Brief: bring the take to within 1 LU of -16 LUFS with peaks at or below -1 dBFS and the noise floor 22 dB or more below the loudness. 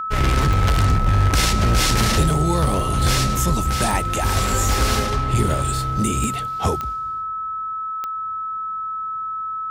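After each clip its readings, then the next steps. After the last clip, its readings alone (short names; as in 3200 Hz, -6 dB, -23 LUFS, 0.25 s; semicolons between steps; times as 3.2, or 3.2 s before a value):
clicks 6; steady tone 1300 Hz; tone level -24 dBFS; loudness -20.5 LUFS; peak -7.0 dBFS; loudness target -16.0 LUFS
-> de-click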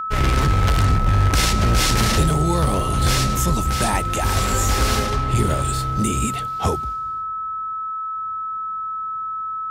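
clicks 0; steady tone 1300 Hz; tone level -24 dBFS
-> notch 1300 Hz, Q 30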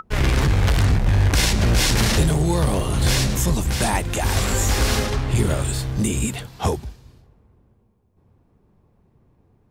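steady tone none; loudness -20.5 LUFS; peak -8.0 dBFS; loudness target -16.0 LUFS
-> gain +4.5 dB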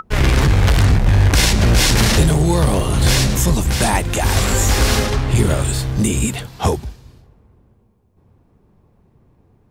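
loudness -16.0 LUFS; peak -3.5 dBFS; noise floor -56 dBFS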